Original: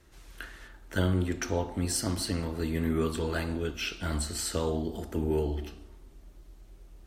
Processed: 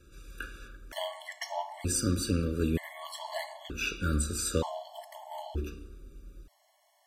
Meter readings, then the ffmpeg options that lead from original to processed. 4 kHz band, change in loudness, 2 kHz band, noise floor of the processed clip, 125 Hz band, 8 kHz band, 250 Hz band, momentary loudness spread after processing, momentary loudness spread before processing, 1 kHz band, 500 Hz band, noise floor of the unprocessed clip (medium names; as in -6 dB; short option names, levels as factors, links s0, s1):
-2.0 dB, -2.5 dB, -1.0 dB, -69 dBFS, -3.0 dB, +1.0 dB, -3.5 dB, 19 LU, 13 LU, +1.0 dB, -4.5 dB, -54 dBFS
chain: -af "afftfilt=real='re*gt(sin(2*PI*0.54*pts/sr)*(1-2*mod(floor(b*sr/1024/570),2)),0)':imag='im*gt(sin(2*PI*0.54*pts/sr)*(1-2*mod(floor(b*sr/1024/570),2)),0)':win_size=1024:overlap=0.75,volume=1.41"